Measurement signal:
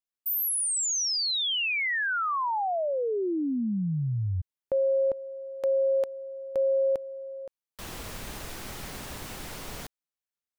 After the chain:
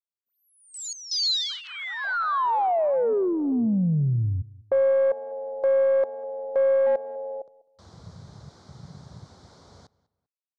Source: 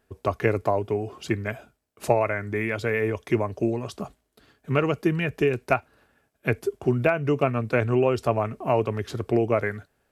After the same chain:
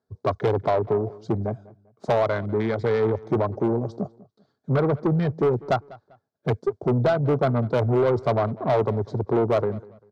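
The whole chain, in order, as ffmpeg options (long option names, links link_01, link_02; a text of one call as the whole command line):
ffmpeg -i in.wav -filter_complex "[0:a]afwtdn=0.0398,equalizer=frequency=2600:width=1.7:gain=-13.5,asoftclip=type=tanh:threshold=-22.5dB,highpass=frequency=100:width=0.5412,highpass=frequency=100:width=1.3066,equalizer=frequency=310:width_type=q:width=4:gain=-4,equalizer=frequency=1800:width_type=q:width=4:gain=-6,equalizer=frequency=2700:width_type=q:width=4:gain=-9,equalizer=frequency=4100:width_type=q:width=4:gain=4,lowpass=frequency=5900:width=0.5412,lowpass=frequency=5900:width=1.3066,aeval=exprs='0.126*(cos(1*acos(clip(val(0)/0.126,-1,1)))-cos(1*PI/2))+0.01*(cos(2*acos(clip(val(0)/0.126,-1,1)))-cos(2*PI/2))+0.00126*(cos(8*acos(clip(val(0)/0.126,-1,1)))-cos(8*PI/2))':channel_layout=same,asplit=2[link_01][link_02];[link_02]adelay=197,lowpass=frequency=3700:poles=1,volume=-21dB,asplit=2[link_03][link_04];[link_04]adelay=197,lowpass=frequency=3700:poles=1,volume=0.3[link_05];[link_03][link_05]amix=inputs=2:normalize=0[link_06];[link_01][link_06]amix=inputs=2:normalize=0,asoftclip=type=hard:threshold=-20dB,volume=7.5dB" out.wav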